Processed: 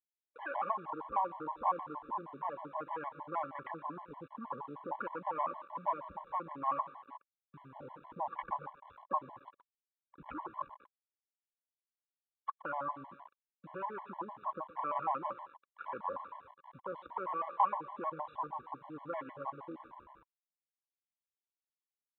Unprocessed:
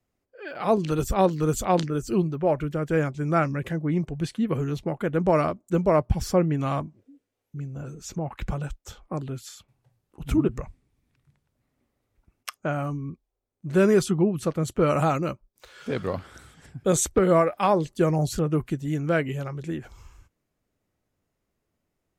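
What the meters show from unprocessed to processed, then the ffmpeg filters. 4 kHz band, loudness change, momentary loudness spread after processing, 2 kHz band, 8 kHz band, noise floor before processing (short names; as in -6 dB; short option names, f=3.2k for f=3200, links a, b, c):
under -25 dB, -14.5 dB, 17 LU, -14.0 dB, under -40 dB, -80 dBFS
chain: -filter_complex "[0:a]alimiter=limit=-16dB:level=0:latency=1:release=391,aeval=exprs='0.158*(cos(1*acos(clip(val(0)/0.158,-1,1)))-cos(1*PI/2))+0.0282*(cos(5*acos(clip(val(0)/0.158,-1,1)))-cos(5*PI/2))+0.00316*(cos(6*acos(clip(val(0)/0.158,-1,1)))-cos(6*PI/2))':c=same,afwtdn=0.0158,acompressor=threshold=-30dB:ratio=10,asplit=2[a][b];[b]aecho=0:1:120|240|360|480|600|720:0.158|0.0951|0.0571|0.0342|0.0205|0.0123[c];[a][c]amix=inputs=2:normalize=0,acontrast=67,aecho=1:1:3.6:0.32,aresample=8000,aeval=exprs='val(0)*gte(abs(val(0)),0.0112)':c=same,aresample=44100,bandpass=f=1k:t=q:w=11:csg=0,afftfilt=real='re*gt(sin(2*PI*6.4*pts/sr)*(1-2*mod(floor(b*sr/1024/570),2)),0)':imag='im*gt(sin(2*PI*6.4*pts/sr)*(1-2*mod(floor(b*sr/1024/570),2)),0)':win_size=1024:overlap=0.75,volume=11dB"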